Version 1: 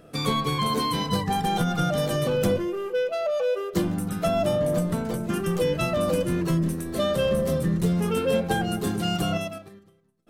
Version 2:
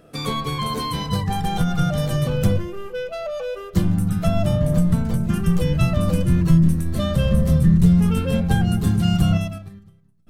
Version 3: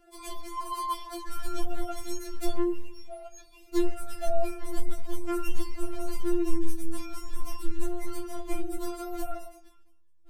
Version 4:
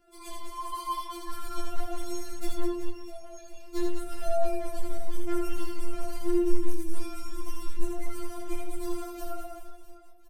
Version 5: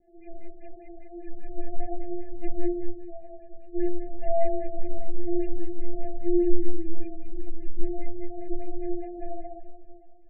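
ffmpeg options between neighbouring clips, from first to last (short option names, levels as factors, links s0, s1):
-af "asubboost=boost=11:cutoff=120"
-af "afftfilt=real='re*4*eq(mod(b,16),0)':imag='im*4*eq(mod(b,16),0)':win_size=2048:overlap=0.75,volume=0.668"
-filter_complex "[0:a]flanger=delay=16.5:depth=2.6:speed=0.92,asplit=2[s0][s1];[s1]aecho=0:1:80|200|380|650|1055:0.631|0.398|0.251|0.158|0.1[s2];[s0][s2]amix=inputs=2:normalize=0"
-af "adynamicsmooth=sensitivity=3.5:basefreq=1200,asuperstop=centerf=1200:order=20:qfactor=1.4,afftfilt=real='re*lt(b*sr/1024,870*pow(2800/870,0.5+0.5*sin(2*PI*5*pts/sr)))':imag='im*lt(b*sr/1024,870*pow(2800/870,0.5+0.5*sin(2*PI*5*pts/sr)))':win_size=1024:overlap=0.75,volume=1.41"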